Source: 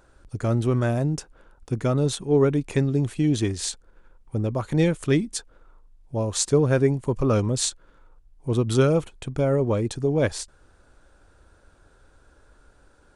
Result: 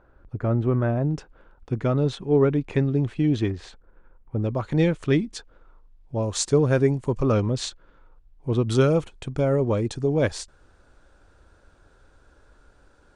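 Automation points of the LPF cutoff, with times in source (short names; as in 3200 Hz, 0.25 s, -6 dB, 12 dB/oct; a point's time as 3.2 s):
1700 Hz
from 1.11 s 3300 Hz
from 3.5 s 1900 Hz
from 4.43 s 4500 Hz
from 6.23 s 7800 Hz
from 7.32 s 4200 Hz
from 8.62 s 7500 Hz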